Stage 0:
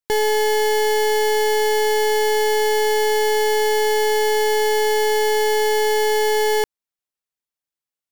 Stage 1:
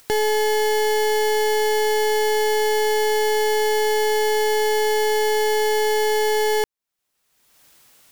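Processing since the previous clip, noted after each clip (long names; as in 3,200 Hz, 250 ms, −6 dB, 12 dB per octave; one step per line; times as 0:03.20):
upward compression, threshold −22 dBFS
level −1.5 dB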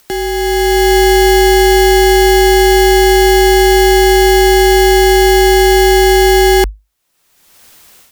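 automatic gain control gain up to 9.5 dB
frequency shifter −51 Hz
level +2 dB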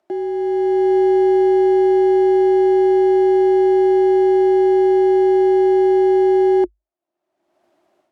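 pair of resonant band-passes 470 Hz, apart 0.82 octaves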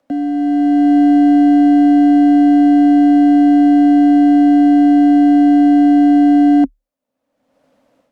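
frequency shifter −87 Hz
level +4.5 dB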